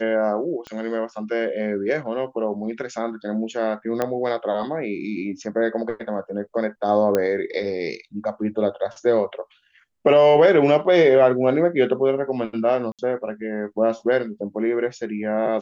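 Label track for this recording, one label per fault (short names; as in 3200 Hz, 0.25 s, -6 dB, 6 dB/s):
0.670000	0.670000	pop -21 dBFS
4.020000	4.020000	pop -10 dBFS
7.150000	7.150000	pop -8 dBFS
12.920000	12.990000	gap 67 ms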